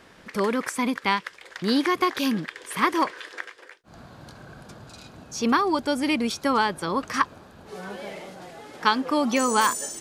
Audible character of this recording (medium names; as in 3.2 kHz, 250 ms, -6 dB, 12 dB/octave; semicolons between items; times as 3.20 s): noise floor -51 dBFS; spectral tilt -3.0 dB/octave